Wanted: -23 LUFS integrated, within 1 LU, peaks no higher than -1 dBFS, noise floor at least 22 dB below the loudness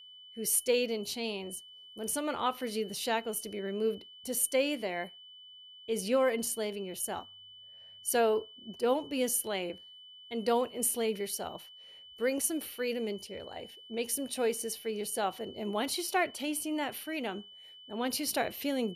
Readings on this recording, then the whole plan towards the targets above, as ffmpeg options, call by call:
steady tone 3000 Hz; tone level -50 dBFS; loudness -32.5 LUFS; peak -14.0 dBFS; loudness target -23.0 LUFS
-> -af "bandreject=f=3k:w=30"
-af "volume=9.5dB"

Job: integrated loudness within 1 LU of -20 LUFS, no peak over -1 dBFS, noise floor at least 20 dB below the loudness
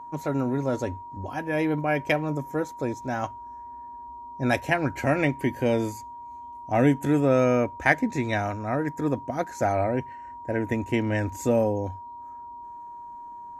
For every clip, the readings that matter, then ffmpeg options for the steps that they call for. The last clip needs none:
steady tone 950 Hz; tone level -38 dBFS; loudness -26.0 LUFS; peak -5.5 dBFS; loudness target -20.0 LUFS
-> -af "bandreject=f=950:w=30"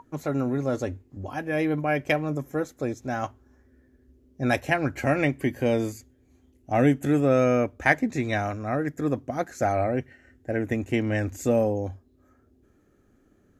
steady tone none; loudness -26.0 LUFS; peak -6.0 dBFS; loudness target -20.0 LUFS
-> -af "volume=6dB,alimiter=limit=-1dB:level=0:latency=1"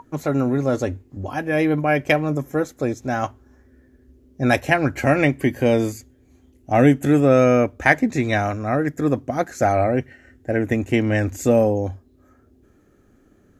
loudness -20.0 LUFS; peak -1.0 dBFS; noise floor -56 dBFS

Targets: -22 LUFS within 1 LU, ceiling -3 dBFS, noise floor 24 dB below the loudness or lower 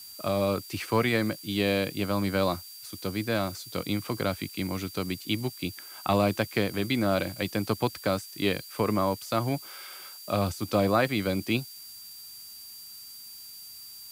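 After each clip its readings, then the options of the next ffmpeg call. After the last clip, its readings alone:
steady tone 4700 Hz; tone level -46 dBFS; noise floor -45 dBFS; noise floor target -53 dBFS; loudness -28.5 LUFS; peak -12.0 dBFS; loudness target -22.0 LUFS
-> -af "bandreject=f=4.7k:w=30"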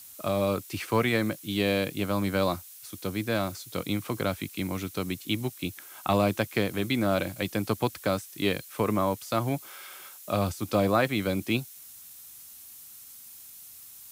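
steady tone none; noise floor -48 dBFS; noise floor target -53 dBFS
-> -af "afftdn=nr=6:nf=-48"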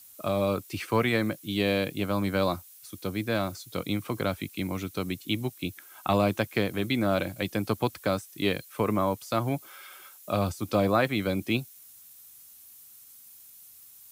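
noise floor -52 dBFS; noise floor target -53 dBFS
-> -af "afftdn=nr=6:nf=-52"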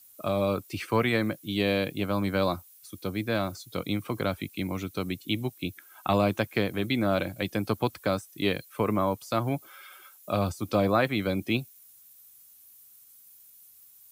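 noise floor -55 dBFS; loudness -29.0 LUFS; peak -12.5 dBFS; loudness target -22.0 LUFS
-> -af "volume=7dB"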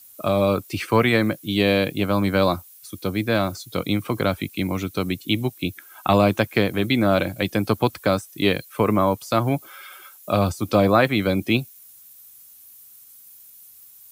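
loudness -22.0 LUFS; peak -5.5 dBFS; noise floor -48 dBFS

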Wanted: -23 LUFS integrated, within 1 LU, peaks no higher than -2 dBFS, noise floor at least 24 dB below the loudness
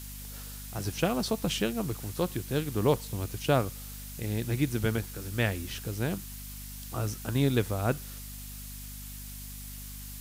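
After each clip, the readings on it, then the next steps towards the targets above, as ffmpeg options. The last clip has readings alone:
hum 50 Hz; harmonics up to 250 Hz; hum level -42 dBFS; noise floor -42 dBFS; noise floor target -56 dBFS; loudness -32.0 LUFS; peak -11.5 dBFS; loudness target -23.0 LUFS
-> -af "bandreject=f=50:t=h:w=4,bandreject=f=100:t=h:w=4,bandreject=f=150:t=h:w=4,bandreject=f=200:t=h:w=4,bandreject=f=250:t=h:w=4"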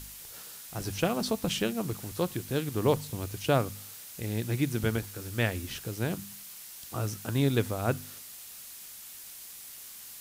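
hum none; noise floor -46 dBFS; noise floor target -56 dBFS
-> -af "afftdn=nr=10:nf=-46"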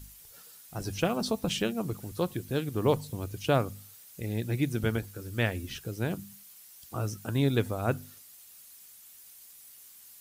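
noise floor -53 dBFS; noise floor target -56 dBFS
-> -af "afftdn=nr=6:nf=-53"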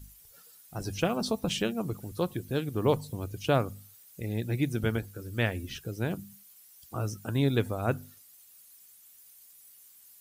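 noise floor -56 dBFS; loudness -31.5 LUFS; peak -12.5 dBFS; loudness target -23.0 LUFS
-> -af "volume=8.5dB"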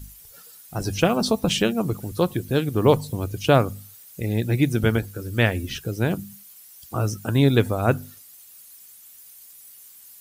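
loudness -23.0 LUFS; peak -4.0 dBFS; noise floor -48 dBFS

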